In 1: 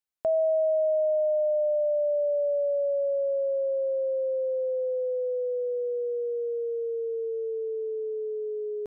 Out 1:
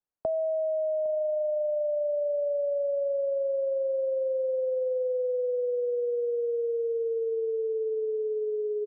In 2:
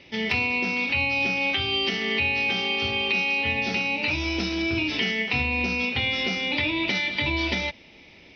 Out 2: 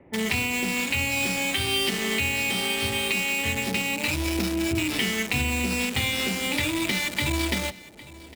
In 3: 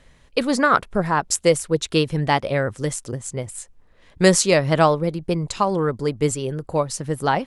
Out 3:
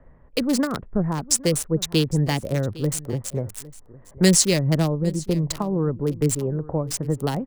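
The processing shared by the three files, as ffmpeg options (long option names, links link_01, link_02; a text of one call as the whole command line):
ffmpeg -i in.wav -filter_complex "[0:a]acrossover=split=330|3000[link_01][link_02][link_03];[link_02]acompressor=threshold=-30dB:ratio=10[link_04];[link_01][link_04][link_03]amix=inputs=3:normalize=0,equalizer=frequency=1900:width=7.4:gain=5,acrossover=split=650|1300[link_05][link_06][link_07];[link_07]aeval=exprs='val(0)*gte(abs(val(0)),0.0398)':channel_layout=same[link_08];[link_05][link_06][link_08]amix=inputs=3:normalize=0,aecho=1:1:807:0.106,volume=2.5dB" out.wav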